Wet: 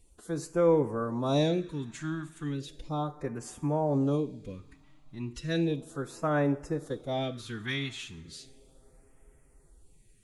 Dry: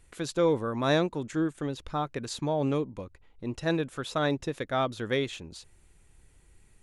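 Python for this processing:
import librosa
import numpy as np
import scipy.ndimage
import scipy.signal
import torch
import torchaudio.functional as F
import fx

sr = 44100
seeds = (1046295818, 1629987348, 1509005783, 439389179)

y = fx.stretch_vocoder(x, sr, factor=1.5)
y = fx.rev_double_slope(y, sr, seeds[0], early_s=0.57, late_s=4.7, knee_db=-20, drr_db=11.5)
y = fx.phaser_stages(y, sr, stages=2, low_hz=470.0, high_hz=4100.0, hz=0.35, feedback_pct=0)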